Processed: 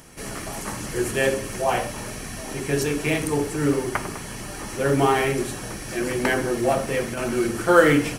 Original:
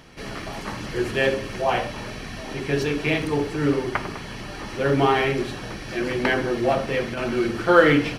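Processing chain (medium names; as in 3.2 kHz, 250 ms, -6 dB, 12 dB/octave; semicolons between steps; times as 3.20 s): resonant high shelf 5.9 kHz +13 dB, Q 1.5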